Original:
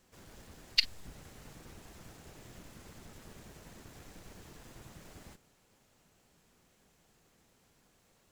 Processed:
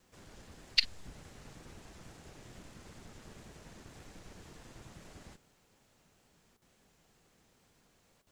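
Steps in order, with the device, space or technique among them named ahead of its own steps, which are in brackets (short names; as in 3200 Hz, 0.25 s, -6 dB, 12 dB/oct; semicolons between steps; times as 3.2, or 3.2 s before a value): worn cassette (LPF 9200 Hz 12 dB/oct; wow and flutter; level dips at 6.57/8.22, 46 ms -11 dB; white noise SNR 35 dB)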